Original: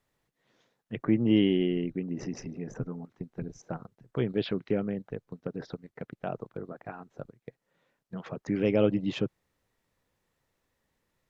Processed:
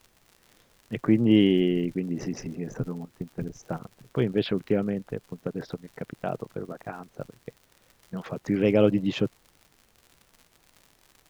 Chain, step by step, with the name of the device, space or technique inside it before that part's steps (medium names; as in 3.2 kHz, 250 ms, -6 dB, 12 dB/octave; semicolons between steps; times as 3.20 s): vinyl LP (crackle 95 per s -44 dBFS; pink noise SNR 37 dB); trim +4 dB